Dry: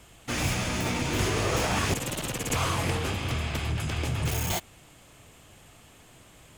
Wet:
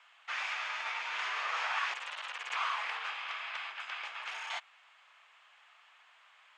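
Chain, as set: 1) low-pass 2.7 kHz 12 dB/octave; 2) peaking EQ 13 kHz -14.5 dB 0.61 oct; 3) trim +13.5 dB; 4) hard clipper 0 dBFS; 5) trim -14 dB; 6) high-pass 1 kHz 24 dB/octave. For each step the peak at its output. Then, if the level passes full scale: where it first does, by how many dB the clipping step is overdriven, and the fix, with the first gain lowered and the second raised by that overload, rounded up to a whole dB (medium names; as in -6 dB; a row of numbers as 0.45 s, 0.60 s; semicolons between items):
-15.0 dBFS, -15.0 dBFS, -1.5 dBFS, -1.5 dBFS, -15.5 dBFS, -20.0 dBFS; nothing clips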